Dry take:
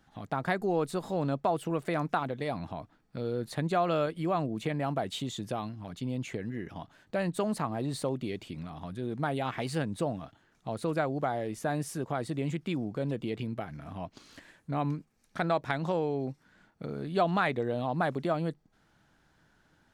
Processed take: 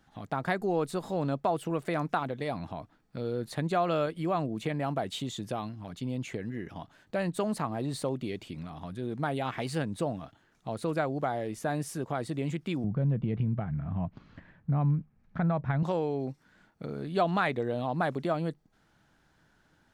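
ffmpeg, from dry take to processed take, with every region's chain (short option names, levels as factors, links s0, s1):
-filter_complex "[0:a]asettb=1/sr,asplit=3[s0][s1][s2];[s0]atrim=end=12.844[s3];[s1]atrim=start=12.84:end=15.83,asetpts=PTS-STARTPTS,afade=t=in:d=0.004:c=qsin,afade=t=out:st=2.986:d=0.004:c=qsin,lowpass=1800,lowshelf=f=230:t=q:w=1.5:g=9.5,acompressor=threshold=0.0562:ratio=2:attack=3.2:release=140:knee=1:detection=peak[s4];[s2]atrim=start=15.826[s5];[s3][s4]acrossfade=d=0.004:c1=hsin:c2=qsin[s6];[s6][s5]acrossfade=d=0.004:c1=qsin:c2=hsin"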